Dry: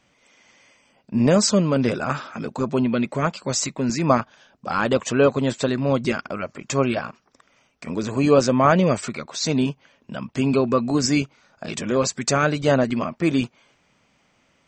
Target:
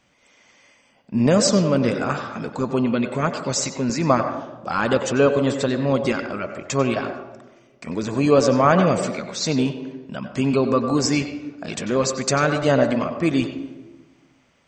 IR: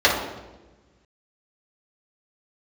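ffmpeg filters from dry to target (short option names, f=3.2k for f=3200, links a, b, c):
-filter_complex "[0:a]asplit=2[a][b];[1:a]atrim=start_sample=2205,adelay=91[c];[b][c]afir=irnorm=-1:irlink=0,volume=-29dB[d];[a][d]amix=inputs=2:normalize=0"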